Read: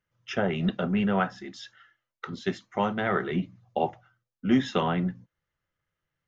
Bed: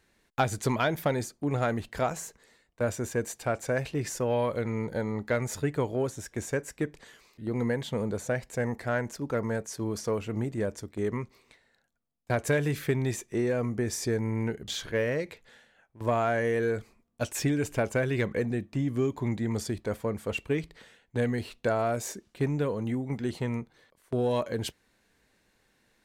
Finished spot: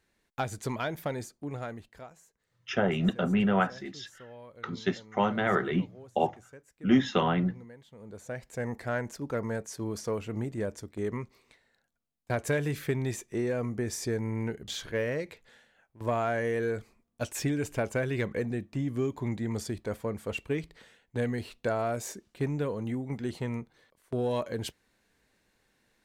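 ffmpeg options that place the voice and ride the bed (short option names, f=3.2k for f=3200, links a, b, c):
-filter_complex "[0:a]adelay=2400,volume=0dB[a];[1:a]volume=12.5dB,afade=t=out:st=1.27:d=0.83:silence=0.177828,afade=t=in:st=7.97:d=0.81:silence=0.11885[b];[a][b]amix=inputs=2:normalize=0"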